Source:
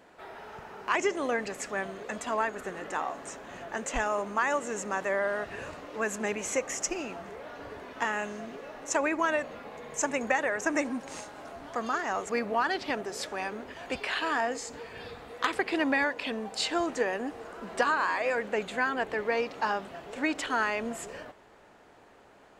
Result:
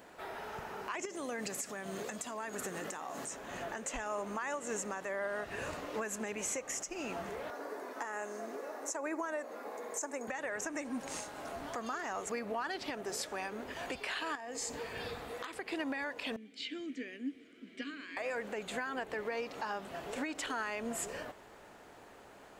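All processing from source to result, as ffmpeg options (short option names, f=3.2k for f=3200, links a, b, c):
-filter_complex "[0:a]asettb=1/sr,asplit=3[a][b][c];[a]atrim=end=1.054[d];[b]atrim=start=1.05:end=3.31,asetpts=PTS-STARTPTS,afade=t=in:d=0.004:c=qsin,afade=t=out:st=2.256:d=0.004:c=qsin,highpass=120,bass=f=250:g=6,treble=f=4k:g=8,acompressor=threshold=-37dB:ratio=4:attack=3.2:release=140:knee=1:detection=peak[e];[c]atrim=start=3.306[f];[d][e]acrossfade=d=0.004:c1=hsin:c2=qsin[g];[g][f]acrossfade=d=0.004:c1=qsin:c2=hsin,asettb=1/sr,asplit=3[h][i][j];[h]atrim=end=7.504[k];[i]atrim=start=7.5:end=10.28,asetpts=PTS-STARTPTS,afade=t=in:d=0.004:c=qsin,afade=t=out:st=2.776:d=0.004:c=qsin,highpass=f=270:w=0.5412,highpass=f=270:w=1.3066,equalizer=f=3k:t=o:w=0.97:g=-12[l];[j]atrim=start=10.276[m];[k][l]acrossfade=d=0.004:c1=hsin:c2=qsin[n];[n][m]acrossfade=d=0.004:c1=qsin:c2=hsin,asettb=1/sr,asplit=3[o][p][q];[o]atrim=end=14.354[r];[p]atrim=start=14.35:end=14.79,asetpts=PTS-STARTPTS,afade=t=in:d=0.004:c=qsin,afade=t=out:st=0.436:d=0.004:c=qsin,bandreject=f=1.4k:w=7.8,acompressor=threshold=-37dB:ratio=8:attack=3.2:release=140:knee=1:detection=peak[s];[q]atrim=start=14.786[t];[r][s]acrossfade=d=0.004:c1=hsin:c2=qsin[u];[u][t]acrossfade=d=0.004:c1=qsin:c2=hsin,asettb=1/sr,asplit=3[v][w][x];[v]atrim=end=16.364[y];[w]atrim=start=16.36:end=18.17,asetpts=PTS-STARTPTS,afade=t=in:d=0.004:c=qsin,afade=t=out:st=1.806:d=0.004:c=qsin,acrossover=split=6300[z][aa];[aa]acompressor=threshold=-56dB:ratio=4:attack=1:release=60[ab];[z][ab]amix=inputs=2:normalize=0,asplit=3[ac][ad][ae];[ac]bandpass=f=270:t=q:w=8,volume=0dB[af];[ad]bandpass=f=2.29k:t=q:w=8,volume=-6dB[ag];[ae]bandpass=f=3.01k:t=q:w=8,volume=-9dB[ah];[af][ag][ah]amix=inputs=3:normalize=0,highshelf=f=6.4k:g=12[ai];[x]atrim=start=18.166[aj];[y][ai]acrossfade=d=0.004:c1=hsin:c2=qsin[ak];[ak][aj]acrossfade=d=0.004:c1=qsin:c2=hsin,acompressor=threshold=-32dB:ratio=2,highshelf=f=8.6k:g=10.5,alimiter=level_in=4.5dB:limit=-24dB:level=0:latency=1:release=334,volume=-4.5dB,volume=1dB"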